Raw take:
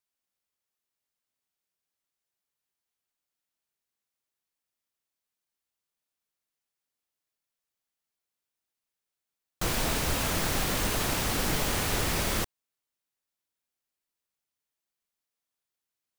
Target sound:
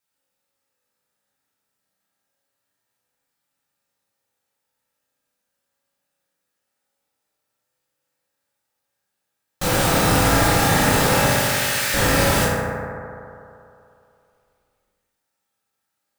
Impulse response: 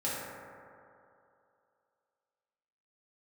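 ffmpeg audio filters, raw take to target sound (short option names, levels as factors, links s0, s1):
-filter_complex "[0:a]asettb=1/sr,asplit=3[s0][s1][s2];[s0]atrim=end=11.274[s3];[s1]atrim=start=11.27:end=11.94,asetpts=PTS-STARTPTS,afade=t=in:d=0.004:c=qsin,afade=t=out:st=0.666:d=0.004:c=qsin,highpass=f=1500:w=0.5412,highpass=f=1500:w=1.3066[s4];[s2]atrim=start=11.936[s5];[s3][s4]acrossfade=d=0.004:c1=hsin:c2=qsin[s6];[s6][s5]acrossfade=d=0.004:c1=qsin:c2=hsin[s7];[1:a]atrim=start_sample=2205[s8];[s7][s8]afir=irnorm=-1:irlink=0,volume=2"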